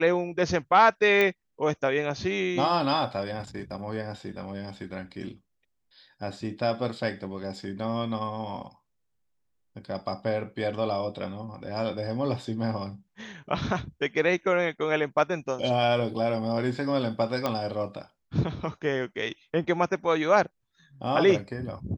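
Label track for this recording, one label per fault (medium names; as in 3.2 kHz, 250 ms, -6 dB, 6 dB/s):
1.210000	1.210000	pop -12 dBFS
17.460000	17.460000	pop -13 dBFS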